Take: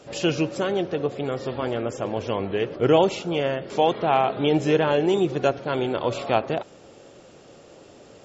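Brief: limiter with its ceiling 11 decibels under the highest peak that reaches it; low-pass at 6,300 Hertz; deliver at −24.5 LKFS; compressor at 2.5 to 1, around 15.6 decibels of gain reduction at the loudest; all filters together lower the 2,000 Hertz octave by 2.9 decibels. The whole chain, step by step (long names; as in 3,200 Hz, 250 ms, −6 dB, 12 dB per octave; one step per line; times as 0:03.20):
low-pass filter 6,300 Hz
parametric band 2,000 Hz −4 dB
downward compressor 2.5 to 1, threshold −39 dBFS
level +18 dB
brickwall limiter −14.5 dBFS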